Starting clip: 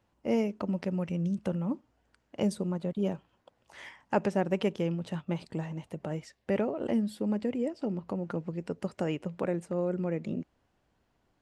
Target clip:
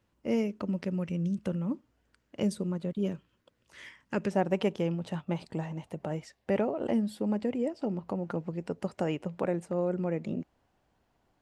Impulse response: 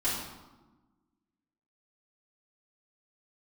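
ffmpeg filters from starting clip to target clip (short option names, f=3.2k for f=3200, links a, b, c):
-af "asetnsamples=n=441:p=0,asendcmd='3.06 equalizer g -14;4.31 equalizer g 3.5',equalizer=f=780:t=o:w=0.76:g=-6.5"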